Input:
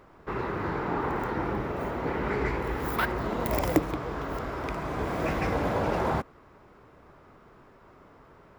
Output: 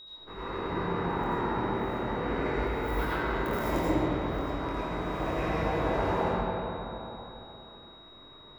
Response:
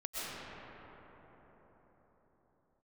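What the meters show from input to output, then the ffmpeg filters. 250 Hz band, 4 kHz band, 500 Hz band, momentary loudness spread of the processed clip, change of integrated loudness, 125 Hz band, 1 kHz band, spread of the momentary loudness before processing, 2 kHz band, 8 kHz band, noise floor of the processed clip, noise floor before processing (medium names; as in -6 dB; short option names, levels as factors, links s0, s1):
-0.5 dB, +2.5 dB, -0.5 dB, 17 LU, -1.0 dB, -1.0 dB, 0.0 dB, 6 LU, -1.5 dB, -6.5 dB, -51 dBFS, -55 dBFS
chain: -filter_complex "[0:a]flanger=delay=19.5:depth=6.4:speed=0.36,aeval=exprs='val(0)+0.0141*sin(2*PI*3800*n/s)':c=same[s0];[1:a]atrim=start_sample=2205,asetrate=66150,aresample=44100[s1];[s0][s1]afir=irnorm=-1:irlink=0"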